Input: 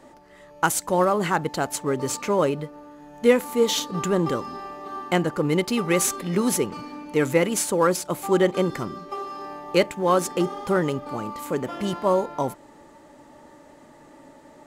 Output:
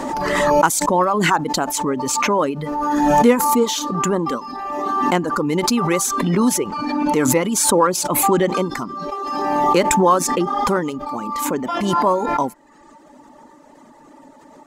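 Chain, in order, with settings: fifteen-band graphic EQ 100 Hz -7 dB, 250 Hz +7 dB, 1 kHz +8 dB, 6.3 kHz +4 dB; reverb removal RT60 0.88 s; swell ahead of each attack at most 24 dB/s

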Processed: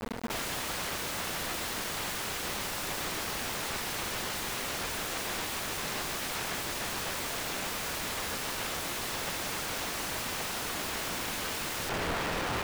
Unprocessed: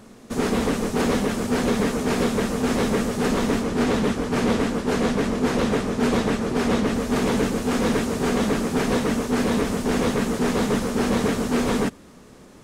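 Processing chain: median filter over 5 samples; peak limiter -19 dBFS, peak gain reduction 7 dB; rippled EQ curve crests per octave 0.95, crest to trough 13 dB; feedback echo behind a low-pass 1183 ms, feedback 66%, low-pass 2.3 kHz, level -13 dB; integer overflow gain 32.5 dB; companded quantiser 2-bit; treble shelf 2.9 kHz -8.5 dB; trim -2.5 dB

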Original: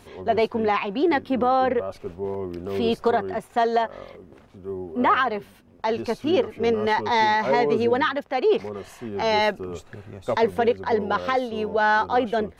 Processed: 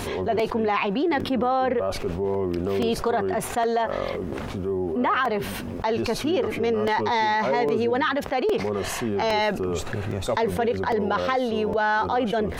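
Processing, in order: crackling interface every 0.81 s, samples 128, repeat, from 0.39 s; level flattener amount 70%; trim -5 dB

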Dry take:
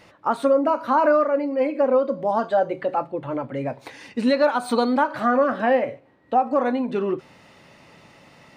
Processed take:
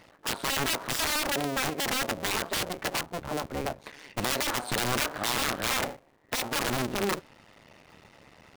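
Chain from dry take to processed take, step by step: cycle switcher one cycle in 2, muted; integer overflow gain 18.5 dB; trim -2 dB

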